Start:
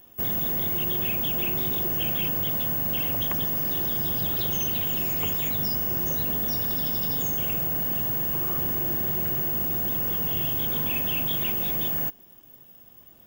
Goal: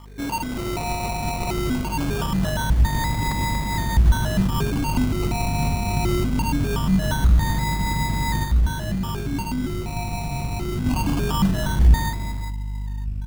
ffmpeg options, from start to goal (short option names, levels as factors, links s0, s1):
-filter_complex "[0:a]equalizer=f=60:t=o:w=1.6:g=-7.5,aecho=1:1:143|164|235|321|407:0.237|0.126|0.266|0.251|0.299,aeval=exprs='val(0)+0.00794*(sin(2*PI*50*n/s)+sin(2*PI*2*50*n/s)/2+sin(2*PI*3*50*n/s)/3+sin(2*PI*4*50*n/s)/4+sin(2*PI*5*50*n/s)/5)':c=same,acrusher=samples=21:mix=1:aa=0.000001:lfo=1:lforange=12.6:lforate=0.22,asubboost=boost=7:cutoff=180,volume=2.37,asoftclip=hard,volume=0.422,asplit=3[s0][s1][s2];[s0]afade=t=out:st=8.43:d=0.02[s3];[s1]flanger=delay=8.5:depth=7.6:regen=77:speed=1:shape=sinusoidal,afade=t=in:st=8.43:d=0.02,afade=t=out:st=10.85:d=0.02[s4];[s2]afade=t=in:st=10.85:d=0.02[s5];[s3][s4][s5]amix=inputs=3:normalize=0"